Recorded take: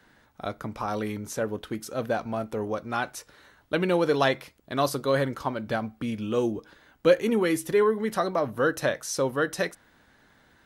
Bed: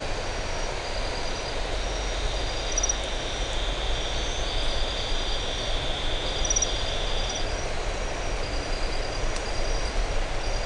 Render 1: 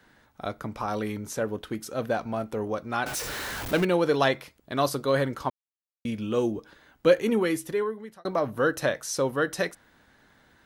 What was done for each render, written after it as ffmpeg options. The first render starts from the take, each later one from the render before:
-filter_complex "[0:a]asettb=1/sr,asplit=3[a][b][c];[a]atrim=end=3.064[d];[b]atrim=start=3.06:end=3.85,asetpts=PTS-STARTPTS,afade=t=in:d=0.004:c=qsin,afade=t=out:st=0.786:d=0.004:c=qsin,aeval=exprs='val(0)+0.5*0.0376*sgn(val(0))':c=same[e];[c]atrim=start=3.846[f];[d][e]acrossfade=d=0.004:c1=hsin:c2=qsin[g];[g][f]acrossfade=d=0.004:c1=qsin:c2=hsin,asplit=4[h][i][j][k];[h]atrim=end=5.5,asetpts=PTS-STARTPTS,afade=t=out:st=5.496:d=0.004:c=hsin[l];[i]atrim=start=5.5:end=6.05,asetpts=PTS-STARTPTS,volume=0[m];[j]atrim=start=6.05:end=8.25,asetpts=PTS-STARTPTS,afade=t=in:d=0.004:c=hsin,afade=t=out:st=1.31:d=0.89[n];[k]atrim=start=8.25,asetpts=PTS-STARTPTS,afade=t=in:d=0.004:c=hsin[o];[l][m][n][o]concat=n=4:v=0:a=1"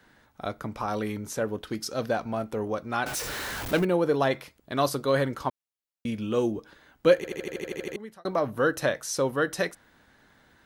-filter_complex "[0:a]asettb=1/sr,asplit=3[a][b][c];[a]atrim=end=1.674[d];[b]atrim=start=1.67:end=2.11,asetpts=PTS-STARTPTS,afade=t=in:d=0.004:c=qsin,afade=t=out:st=0.436:d=0.004:c=qsin,equalizer=f=5k:t=o:w=0.61:g=11.5[e];[c]atrim=start=2.106[f];[d][e]acrossfade=d=0.004:c1=hsin:c2=qsin[g];[g][f]acrossfade=d=0.004:c1=qsin:c2=hsin,asettb=1/sr,asplit=3[h][i][j];[h]atrim=end=3.794[k];[i]atrim=start=3.79:end=4.31,asetpts=PTS-STARTPTS,afade=t=in:d=0.004:c=qsin,afade=t=out:st=0.516:d=0.004:c=qsin,equalizer=f=3.8k:w=0.43:g=-8[l];[j]atrim=start=4.306[m];[k][l]acrossfade=d=0.004:c1=hsin:c2=qsin[n];[n][m]acrossfade=d=0.004:c1=qsin:c2=hsin,asplit=11[o][p][q][r][s][t][u][v][w][x][y];[o]atrim=end=7.242[z];[p]atrim=start=7.158:end=7.242[aa];[q]atrim=start=7.158:end=7.242[ab];[r]atrim=start=7.158:end=7.242[ac];[s]atrim=start=7.158:end=7.242[ad];[t]atrim=start=7.158:end=7.242[ae];[u]atrim=start=7.158:end=7.242[af];[v]atrim=start=7.158:end=7.242[ag];[w]atrim=start=7.158:end=7.242[ah];[x]atrim=start=7.158:end=7.242[ai];[y]atrim=start=7.958[aj];[z][aa]acrossfade=d=0.004:c1=hsin:c2=hsin[ak];[ak][ab]acrossfade=d=0.004:c1=hsin:c2=hsin[al];[al][ac]acrossfade=d=0.004:c1=hsin:c2=hsin[am];[am][ad]acrossfade=d=0.004:c1=hsin:c2=hsin[an];[an][ae]acrossfade=d=0.004:c1=hsin:c2=hsin[ao];[ao][af]acrossfade=d=0.004:c1=hsin:c2=hsin[ap];[ap][ag]acrossfade=d=0.004:c1=hsin:c2=hsin[aq];[aq][ah]acrossfade=d=0.004:c1=hsin:c2=hsin[ar];[ar][ai]acrossfade=d=0.004:c1=hsin:c2=hsin[as];[as][aj]acrossfade=d=0.004:c1=hsin:c2=hsin"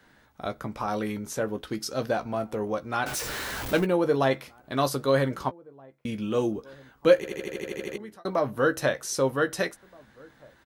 -filter_complex "[0:a]asplit=2[a][b];[b]adelay=15,volume=-10dB[c];[a][c]amix=inputs=2:normalize=0,asplit=2[d][e];[e]adelay=1574,volume=-25dB,highshelf=f=4k:g=-35.4[f];[d][f]amix=inputs=2:normalize=0"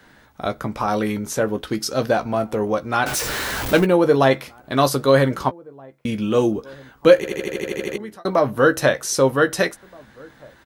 -af "volume=8dB,alimiter=limit=-1dB:level=0:latency=1"

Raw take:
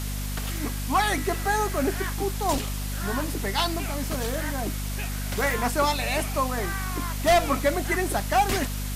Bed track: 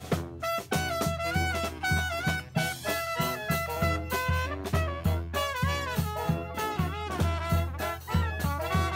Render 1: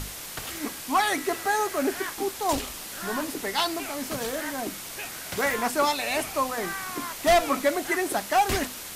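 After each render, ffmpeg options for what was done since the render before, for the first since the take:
-af "bandreject=f=50:t=h:w=6,bandreject=f=100:t=h:w=6,bandreject=f=150:t=h:w=6,bandreject=f=200:t=h:w=6,bandreject=f=250:t=h:w=6"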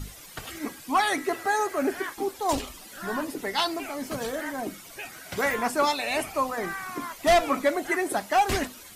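-af "afftdn=nr=12:nf=-39"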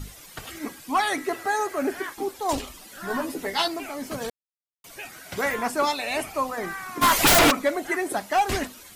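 -filter_complex "[0:a]asettb=1/sr,asplit=3[a][b][c];[a]atrim=end=3.094[d];[b]atrim=start=3.09:end=3.68,asetpts=PTS-STARTPTS,afade=t=in:d=0.004:c=qsin,afade=t=out:st=0.586:d=0.004:c=qsin,asplit=2[e][f];[f]adelay=12,volume=-2.5dB[g];[e][g]amix=inputs=2:normalize=0,atrim=end_sample=26019[h];[c]atrim=start=3.676[i];[d][h]acrossfade=d=0.004:c1=hsin:c2=qsin[j];[j][i]acrossfade=d=0.004:c1=qsin:c2=hsin,asplit=3[k][l][m];[k]afade=t=out:st=7.01:d=0.02[n];[l]aeval=exprs='0.237*sin(PI/2*7.94*val(0)/0.237)':c=same,afade=t=in:st=7.01:d=0.02,afade=t=out:st=7.5:d=0.02[o];[m]afade=t=in:st=7.5:d=0.02[p];[n][o][p]amix=inputs=3:normalize=0,asplit=3[q][r][s];[q]atrim=end=4.3,asetpts=PTS-STARTPTS,afade=t=out:st=4.296:d=0.004:c=hsin[t];[r]atrim=start=4.3:end=4.84,asetpts=PTS-STARTPTS,volume=0[u];[s]atrim=start=4.84,asetpts=PTS-STARTPTS,afade=t=in:d=0.004:c=hsin[v];[t][u][v]concat=n=3:v=0:a=1"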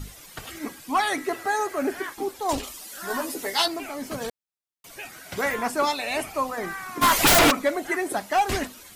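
-filter_complex "[0:a]asettb=1/sr,asplit=3[a][b][c];[a]atrim=end=2.634[d];[b]atrim=start=2.63:end=3.66,asetpts=PTS-STARTPTS,afade=t=in:d=0.004:c=qsin,afade=t=out:st=1.026:d=0.004:c=qsin,bass=f=250:g=-8,treble=f=4k:g=7[e];[c]atrim=start=3.656[f];[d][e]acrossfade=d=0.004:c1=hsin:c2=qsin[g];[g][f]acrossfade=d=0.004:c1=qsin:c2=hsin"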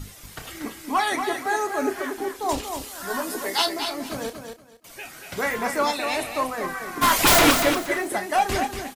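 -filter_complex "[0:a]asplit=2[a][b];[b]adelay=31,volume=-10.5dB[c];[a][c]amix=inputs=2:normalize=0,aecho=1:1:236|472|708:0.447|0.0938|0.0197"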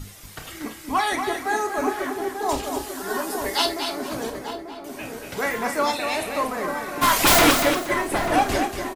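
-filter_complex "[0:a]asplit=2[a][b];[b]adelay=50,volume=-12dB[c];[a][c]amix=inputs=2:normalize=0,asplit=2[d][e];[e]adelay=890,lowpass=f=820:p=1,volume=-5dB,asplit=2[f][g];[g]adelay=890,lowpass=f=820:p=1,volume=0.53,asplit=2[h][i];[i]adelay=890,lowpass=f=820:p=1,volume=0.53,asplit=2[j][k];[k]adelay=890,lowpass=f=820:p=1,volume=0.53,asplit=2[l][m];[m]adelay=890,lowpass=f=820:p=1,volume=0.53,asplit=2[n][o];[o]adelay=890,lowpass=f=820:p=1,volume=0.53,asplit=2[p][q];[q]adelay=890,lowpass=f=820:p=1,volume=0.53[r];[d][f][h][j][l][n][p][r]amix=inputs=8:normalize=0"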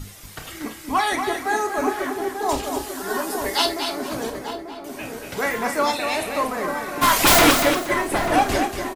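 -af "volume=1.5dB"

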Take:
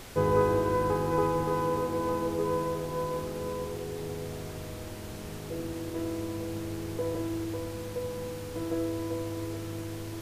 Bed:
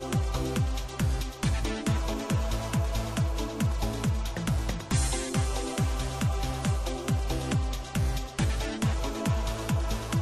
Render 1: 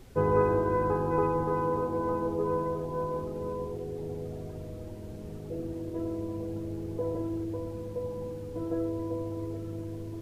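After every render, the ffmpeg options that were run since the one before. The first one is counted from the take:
-af "afftdn=nr=14:nf=-40"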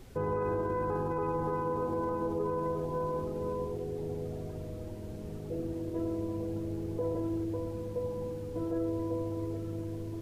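-af "alimiter=level_in=0.5dB:limit=-24dB:level=0:latency=1:release=33,volume=-0.5dB"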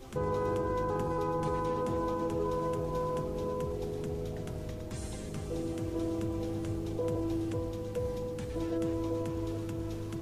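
-filter_complex "[1:a]volume=-15.5dB[a];[0:a][a]amix=inputs=2:normalize=0"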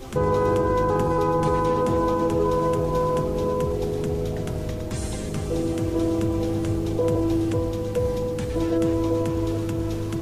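-af "volume=10.5dB"

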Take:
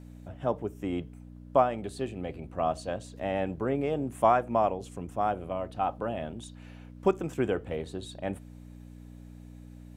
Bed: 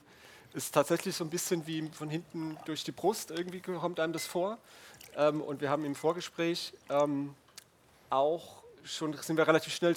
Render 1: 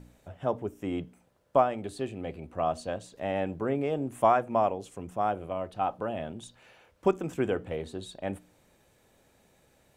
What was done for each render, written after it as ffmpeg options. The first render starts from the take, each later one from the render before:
-af "bandreject=f=60:t=h:w=4,bandreject=f=120:t=h:w=4,bandreject=f=180:t=h:w=4,bandreject=f=240:t=h:w=4,bandreject=f=300:t=h:w=4"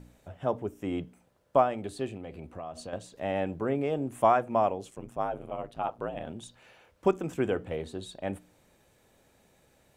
-filter_complex "[0:a]asettb=1/sr,asplit=3[a][b][c];[a]atrim=end=2.164[d];[b]atrim=start=2.16:end=2.93,asetpts=PTS-STARTPTS,afade=t=in:d=0.004:c=qsin,afade=t=out:st=0.766:d=0.004:c=qsin,acompressor=threshold=-36dB:ratio=5:attack=3.2:release=140:knee=1:detection=peak[e];[c]atrim=start=2.926[f];[d][e]acrossfade=d=0.004:c1=hsin:c2=qsin[g];[g][f]acrossfade=d=0.004:c1=qsin:c2=hsin,asettb=1/sr,asplit=3[h][i][j];[h]atrim=end=4.904[k];[i]atrim=start=4.9:end=6.27,asetpts=PTS-STARTPTS,afade=t=in:d=0.004:c=qsin,afade=t=out:st=1.366:d=0.004:c=qsin,aeval=exprs='val(0)*sin(2*PI*55*n/s)':c=same[l];[j]atrim=start=6.266[m];[k][l]acrossfade=d=0.004:c1=hsin:c2=qsin[n];[n][m]acrossfade=d=0.004:c1=qsin:c2=hsin"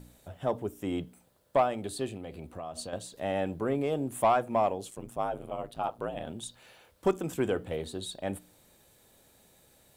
-af "aexciter=amount=2.1:drive=4.5:freq=3.4k,asoftclip=type=tanh:threshold=-15dB"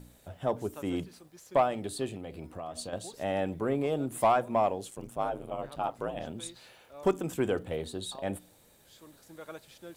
-filter_complex "[1:a]volume=-19dB[a];[0:a][a]amix=inputs=2:normalize=0"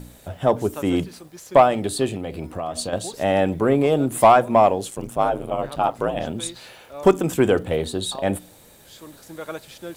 -af "volume=11.5dB"

